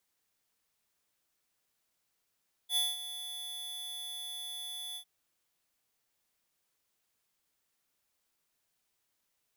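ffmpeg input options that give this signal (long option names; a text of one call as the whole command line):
ffmpeg -f lavfi -i "aevalsrc='0.0376*(2*lt(mod(3450*t,1),0.5)-1)':duration=2.352:sample_rate=44100,afade=type=in:duration=0.074,afade=type=out:start_time=0.074:duration=0.196:silence=0.224,afade=type=out:start_time=2.27:duration=0.082" out.wav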